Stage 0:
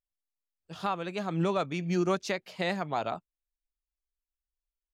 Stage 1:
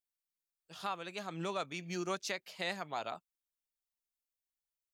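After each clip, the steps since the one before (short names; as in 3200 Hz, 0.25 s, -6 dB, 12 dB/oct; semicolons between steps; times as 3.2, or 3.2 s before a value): tilt +2.5 dB/oct; gain -7 dB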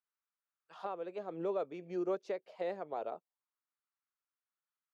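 auto-wah 460–1300 Hz, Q 2.9, down, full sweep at -38.5 dBFS; gain +9 dB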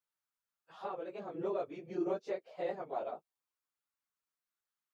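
phase scrambler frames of 50 ms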